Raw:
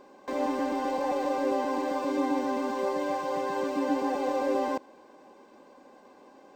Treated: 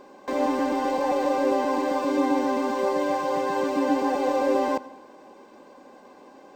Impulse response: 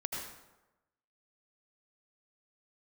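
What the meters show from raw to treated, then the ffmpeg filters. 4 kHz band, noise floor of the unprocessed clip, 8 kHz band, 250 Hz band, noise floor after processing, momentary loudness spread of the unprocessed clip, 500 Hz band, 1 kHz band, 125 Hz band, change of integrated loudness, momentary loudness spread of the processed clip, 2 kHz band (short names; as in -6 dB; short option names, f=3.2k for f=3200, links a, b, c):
+5.0 dB, -55 dBFS, +5.0 dB, +4.5 dB, -50 dBFS, 2 LU, +5.0 dB, +4.5 dB, +5.0 dB, +5.0 dB, 3 LU, +5.0 dB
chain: -filter_complex "[0:a]asplit=2[a][b];[1:a]atrim=start_sample=2205[c];[b][c]afir=irnorm=-1:irlink=0,volume=-18dB[d];[a][d]amix=inputs=2:normalize=0,volume=4dB"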